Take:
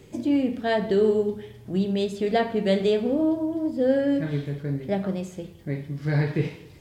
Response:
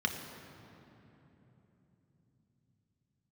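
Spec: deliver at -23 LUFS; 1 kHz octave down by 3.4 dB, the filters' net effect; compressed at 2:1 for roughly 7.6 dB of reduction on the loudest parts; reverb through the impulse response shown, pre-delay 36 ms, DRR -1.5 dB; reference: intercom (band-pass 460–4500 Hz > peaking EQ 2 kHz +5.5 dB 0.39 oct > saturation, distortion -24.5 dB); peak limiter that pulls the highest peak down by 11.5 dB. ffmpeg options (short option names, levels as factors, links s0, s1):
-filter_complex "[0:a]equalizer=f=1000:t=o:g=-5,acompressor=threshold=0.0251:ratio=2,alimiter=level_in=2:limit=0.0631:level=0:latency=1,volume=0.501,asplit=2[s0][s1];[1:a]atrim=start_sample=2205,adelay=36[s2];[s1][s2]afir=irnorm=-1:irlink=0,volume=0.562[s3];[s0][s3]amix=inputs=2:normalize=0,highpass=460,lowpass=4500,equalizer=f=2000:t=o:w=0.39:g=5.5,asoftclip=threshold=0.0422,volume=7.5"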